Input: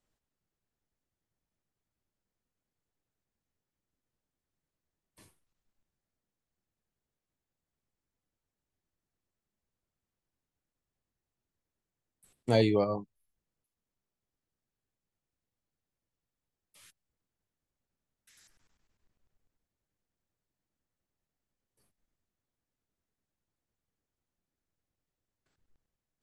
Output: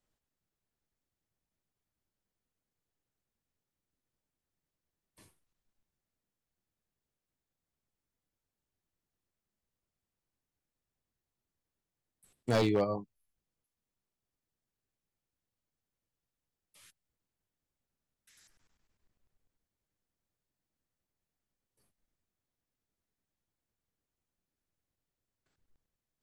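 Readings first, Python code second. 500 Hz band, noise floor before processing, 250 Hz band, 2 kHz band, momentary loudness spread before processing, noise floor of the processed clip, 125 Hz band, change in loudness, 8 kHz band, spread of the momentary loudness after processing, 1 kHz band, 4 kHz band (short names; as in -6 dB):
-3.0 dB, under -85 dBFS, -2.5 dB, -0.5 dB, 14 LU, under -85 dBFS, -3.0 dB, -2.5 dB, n/a, 13 LU, -1.0 dB, -2.5 dB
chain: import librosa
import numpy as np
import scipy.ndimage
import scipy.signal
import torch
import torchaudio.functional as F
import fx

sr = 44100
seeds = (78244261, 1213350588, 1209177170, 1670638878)

y = 10.0 ** (-18.5 / 20.0) * (np.abs((x / 10.0 ** (-18.5 / 20.0) + 3.0) % 4.0 - 2.0) - 1.0)
y = F.gain(torch.from_numpy(y), -1.5).numpy()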